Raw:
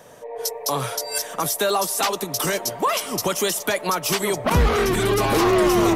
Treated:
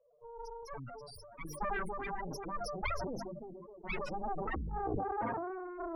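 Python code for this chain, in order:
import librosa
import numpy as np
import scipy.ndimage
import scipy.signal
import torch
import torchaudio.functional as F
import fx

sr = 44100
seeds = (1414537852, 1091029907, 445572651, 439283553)

y = fx.echo_split(x, sr, split_hz=670.0, low_ms=285, high_ms=388, feedback_pct=52, wet_db=-8.0)
y = fx.spec_topn(y, sr, count=2)
y = fx.low_shelf(y, sr, hz=440.0, db=-6.5, at=(0.63, 1.45))
y = fx.formant_cascade(y, sr, vowel='i', at=(3.22, 3.82), fade=0.02)
y = fx.cheby_harmonics(y, sr, harmonics=(3, 6, 7, 8), levels_db=(-10, -17, -30, -43), full_scale_db=-11.5)
y = fx.high_shelf(y, sr, hz=2900.0, db=-10.5)
y = fx.hum_notches(y, sr, base_hz=50, count=7)
y = fx.over_compress(y, sr, threshold_db=-35.0, ratio=-1.0)
y = fx.highpass(y, sr, hz=83.0, slope=12, at=(4.99, 5.5))
y = fx.sustainer(y, sr, db_per_s=22.0)
y = y * librosa.db_to_amplitude(-3.5)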